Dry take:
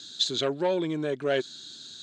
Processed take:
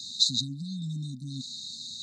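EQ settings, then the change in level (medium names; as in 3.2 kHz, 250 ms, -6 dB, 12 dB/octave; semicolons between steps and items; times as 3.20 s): brick-wall FIR band-stop 270–3600 Hz; +5.0 dB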